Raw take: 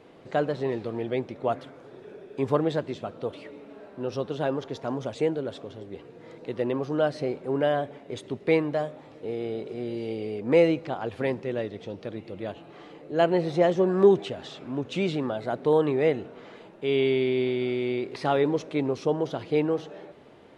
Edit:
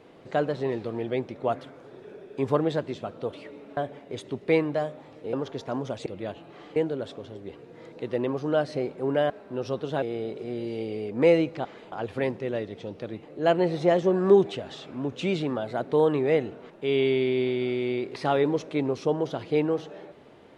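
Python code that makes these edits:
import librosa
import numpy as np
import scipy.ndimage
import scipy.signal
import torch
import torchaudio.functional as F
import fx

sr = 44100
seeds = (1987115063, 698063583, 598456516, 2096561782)

y = fx.edit(x, sr, fx.swap(start_s=3.77, length_s=0.72, other_s=7.76, other_length_s=1.56),
    fx.move(start_s=12.26, length_s=0.7, to_s=5.22),
    fx.move(start_s=16.43, length_s=0.27, to_s=10.95), tone=tone)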